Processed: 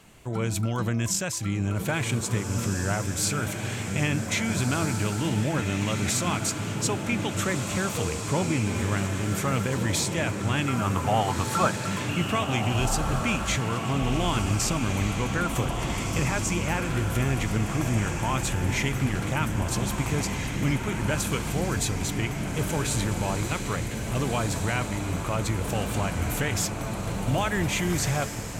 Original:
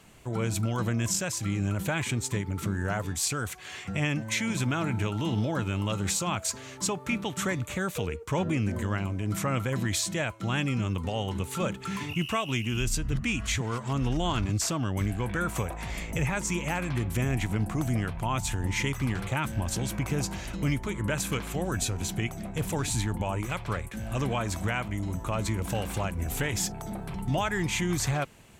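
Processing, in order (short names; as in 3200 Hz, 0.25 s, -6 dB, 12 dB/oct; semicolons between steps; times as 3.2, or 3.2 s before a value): spectral gain 10.68–11.84, 610–1700 Hz +11 dB; on a send: diffused feedback echo 1.655 s, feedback 56%, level -5 dB; on the sum: gain +1.5 dB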